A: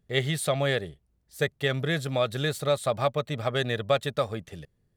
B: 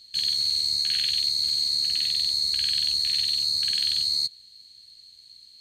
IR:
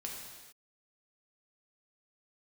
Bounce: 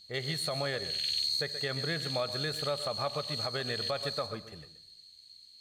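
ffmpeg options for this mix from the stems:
-filter_complex "[0:a]equalizer=f=1.1k:w=0.7:g=5,volume=-9.5dB,asplit=4[a][b][c][d];[b]volume=-14dB[e];[c]volume=-13.5dB[f];[1:a]volume=-6dB,asplit=2[g][h];[h]volume=-14dB[i];[d]apad=whole_len=247111[j];[g][j]sidechaincompress=threshold=-43dB:ratio=8:attack=16:release=358[k];[2:a]atrim=start_sample=2205[l];[e][i]amix=inputs=2:normalize=0[m];[m][l]afir=irnorm=-1:irlink=0[n];[f]aecho=0:1:128:1[o];[a][k][n][o]amix=inputs=4:normalize=0,alimiter=limit=-22.5dB:level=0:latency=1:release=78"

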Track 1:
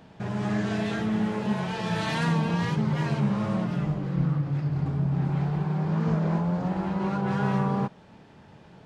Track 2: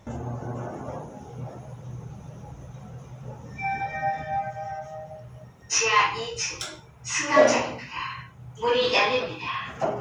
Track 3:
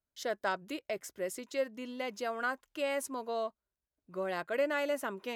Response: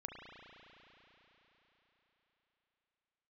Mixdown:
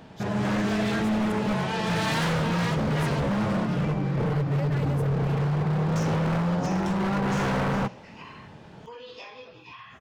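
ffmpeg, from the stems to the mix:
-filter_complex "[0:a]bandreject=f=60:t=h:w=6,bandreject=f=120:t=h:w=6,bandreject=f=180:t=h:w=6,volume=-2.5dB[a];[1:a]agate=range=-33dB:threshold=-36dB:ratio=3:detection=peak,acompressor=threshold=-34dB:ratio=4,adelay=250,volume=-15.5dB[b];[2:a]volume=-12.5dB,asplit=3[c][d][e];[c]atrim=end=1.32,asetpts=PTS-STARTPTS,afade=t=out:st=1.316:d=0.004:c=hsin[f];[d]atrim=start=1.32:end=2.9,asetpts=PTS-STARTPTS,volume=0[g];[e]atrim=start=2.9,asetpts=PTS-STARTPTS,afade=t=in:d=0.004:c=hsin[h];[f][g][h]concat=n=3:v=0:a=1[i];[a][b][i]amix=inputs=3:normalize=0,acontrast=72,aeval=exprs='0.1*(abs(mod(val(0)/0.1+3,4)-2)-1)':c=same"

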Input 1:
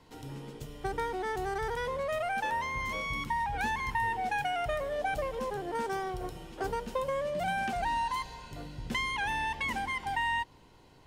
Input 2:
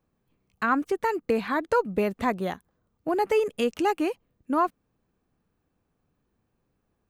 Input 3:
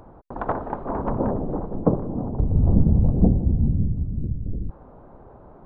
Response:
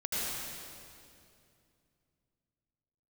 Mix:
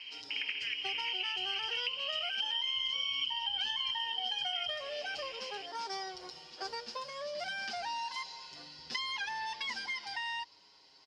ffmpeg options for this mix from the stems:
-filter_complex "[0:a]highpass=f=1.2k:p=1,asplit=2[a][b];[b]adelay=6.7,afreqshift=-0.39[c];[a][c]amix=inputs=2:normalize=1,volume=1dB[d];[1:a]lowpass=1.1k,volume=-12dB[e];[2:a]volume=-4dB[f];[e][f]amix=inputs=2:normalize=0,lowpass=f=2.7k:t=q:w=0.5098,lowpass=f=2.7k:t=q:w=0.6013,lowpass=f=2.7k:t=q:w=0.9,lowpass=f=2.7k:t=q:w=2.563,afreqshift=-3200,acompressor=threshold=-36dB:ratio=2,volume=0dB[g];[d][g]amix=inputs=2:normalize=0,acrossover=split=130[h][i];[i]acompressor=threshold=-35dB:ratio=10[j];[h][j]amix=inputs=2:normalize=0,lowpass=f=5k:t=q:w=9"

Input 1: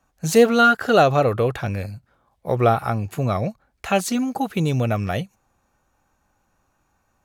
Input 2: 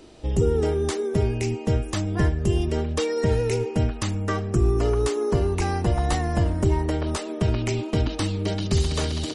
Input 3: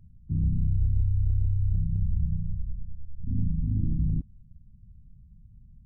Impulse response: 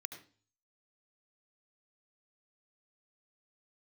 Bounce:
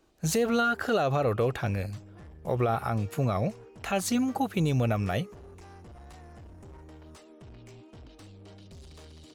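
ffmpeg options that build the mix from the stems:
-filter_complex "[0:a]volume=-4dB[a];[1:a]asoftclip=type=tanh:threshold=-25.5dB,volume=-19.5dB[b];[a][b]amix=inputs=2:normalize=0,alimiter=limit=-17.5dB:level=0:latency=1:release=70"

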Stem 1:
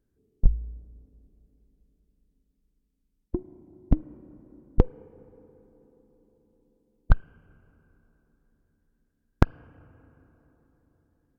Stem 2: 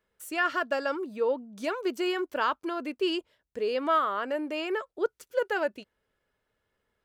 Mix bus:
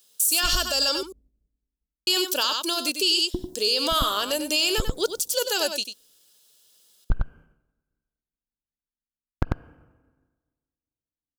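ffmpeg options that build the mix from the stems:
-filter_complex "[0:a]agate=range=-33dB:threshold=-47dB:ratio=3:detection=peak,volume=2dB,asplit=2[a][b];[b]volume=-9dB[c];[1:a]highpass=160,aexciter=amount=12.2:drive=9:freq=3.2k,volume=2dB,asplit=3[d][e][f];[d]atrim=end=1.03,asetpts=PTS-STARTPTS,afade=t=out:st=1.026:d=0.004:c=hsin[g];[e]atrim=start=1.03:end=2.07,asetpts=PTS-STARTPTS,volume=0[h];[f]atrim=start=2.07,asetpts=PTS-STARTPTS,afade=t=in:d=0.004:c=hsin[i];[g][h][i]concat=n=3:v=0:a=1,asplit=3[j][k][l];[k]volume=-9dB[m];[l]apad=whole_len=502173[n];[a][n]sidechaincompress=threshold=-31dB:ratio=8:attack=16:release=157[o];[c][m]amix=inputs=2:normalize=0,aecho=0:1:95:1[p];[o][j][p]amix=inputs=3:normalize=0,alimiter=limit=-12dB:level=0:latency=1:release=55"

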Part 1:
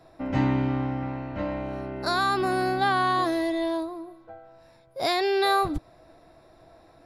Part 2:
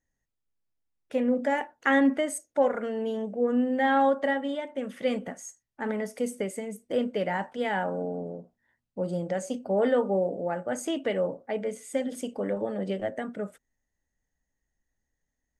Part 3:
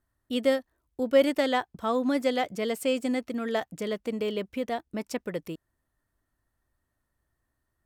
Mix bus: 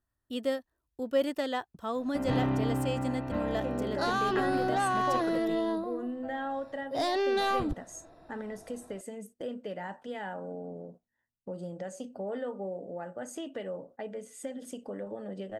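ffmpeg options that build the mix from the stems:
-filter_complex "[0:a]highshelf=f=4.3k:g=-8,asoftclip=type=tanh:threshold=-22.5dB,adelay=1950,volume=-1dB[a];[1:a]agate=range=-10dB:threshold=-46dB:ratio=16:detection=peak,acompressor=threshold=-42dB:ratio=2,adelay=2500,volume=-0.5dB[b];[2:a]volume=-6.5dB[c];[a][b][c]amix=inputs=3:normalize=0,bandreject=f=2.2k:w=8"

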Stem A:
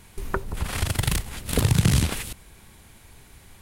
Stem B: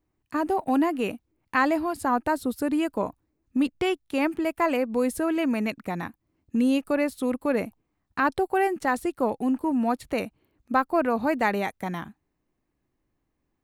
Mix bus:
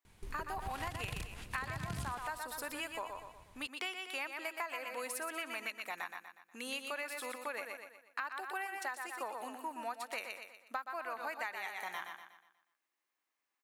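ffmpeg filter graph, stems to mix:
-filter_complex "[0:a]highshelf=f=11k:g=-11.5,adelay=50,volume=-12.5dB[a];[1:a]highpass=1.2k,volume=-1dB,asplit=2[b][c];[c]volume=-7dB,aecho=0:1:121|242|363|484|605|726:1|0.43|0.185|0.0795|0.0342|0.0147[d];[a][b][d]amix=inputs=3:normalize=0,acompressor=threshold=-36dB:ratio=10"

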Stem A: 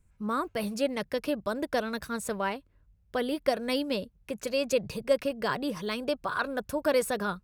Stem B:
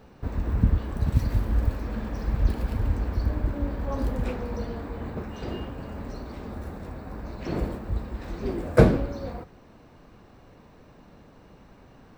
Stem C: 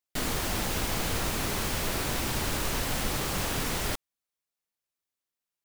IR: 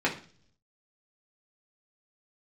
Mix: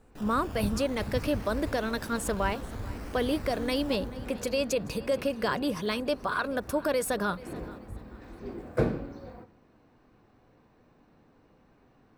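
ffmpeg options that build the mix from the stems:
-filter_complex "[0:a]alimiter=limit=-21dB:level=0:latency=1,volume=2.5dB,asplit=2[a][b];[b]volume=-20dB[c];[1:a]volume=-13.5dB,asplit=2[d][e];[e]volume=-13dB[f];[2:a]lowpass=3.7k,acrusher=samples=17:mix=1:aa=0.000001:lfo=1:lforange=10.2:lforate=0.55,volume=-13.5dB,asplit=2[g][h];[h]volume=-10.5dB[i];[3:a]atrim=start_sample=2205[j];[f][j]afir=irnorm=-1:irlink=0[k];[c][i]amix=inputs=2:normalize=0,aecho=0:1:433|866|1299|1732|2165:1|0.32|0.102|0.0328|0.0105[l];[a][d][g][k][l]amix=inputs=5:normalize=0"

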